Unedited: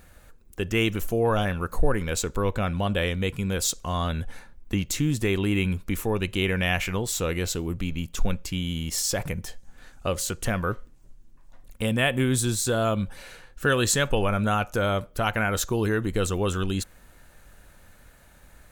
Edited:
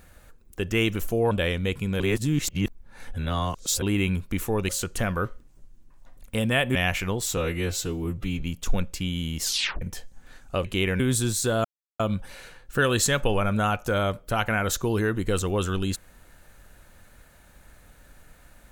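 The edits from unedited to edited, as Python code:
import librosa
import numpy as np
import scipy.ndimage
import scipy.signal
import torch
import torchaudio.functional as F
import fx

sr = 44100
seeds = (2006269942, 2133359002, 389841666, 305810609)

y = fx.edit(x, sr, fx.cut(start_s=1.31, length_s=1.57),
    fx.reverse_span(start_s=3.57, length_s=1.82),
    fx.swap(start_s=6.26, length_s=0.35, other_s=10.16, other_length_s=2.06),
    fx.stretch_span(start_s=7.23, length_s=0.69, factor=1.5),
    fx.tape_stop(start_s=8.94, length_s=0.39),
    fx.insert_silence(at_s=12.87, length_s=0.35), tone=tone)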